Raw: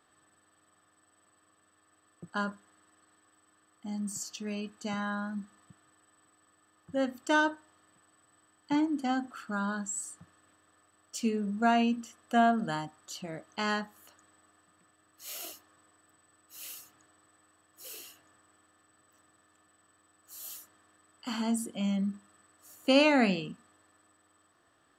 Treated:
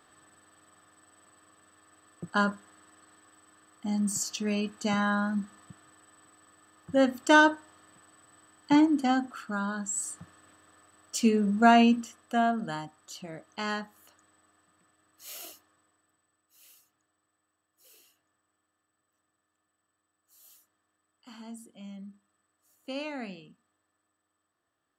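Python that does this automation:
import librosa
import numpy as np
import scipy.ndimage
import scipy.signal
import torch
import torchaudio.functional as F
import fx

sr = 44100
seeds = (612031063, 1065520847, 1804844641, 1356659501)

y = fx.gain(x, sr, db=fx.line((8.8, 7.0), (9.73, 0.0), (10.1, 6.5), (11.92, 6.5), (12.37, -1.5), (15.38, -1.5), (16.61, -13.5)))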